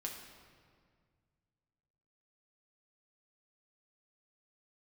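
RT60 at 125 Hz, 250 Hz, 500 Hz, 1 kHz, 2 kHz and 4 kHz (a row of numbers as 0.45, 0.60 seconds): 2.9, 2.3, 2.0, 1.9, 1.7, 1.4 seconds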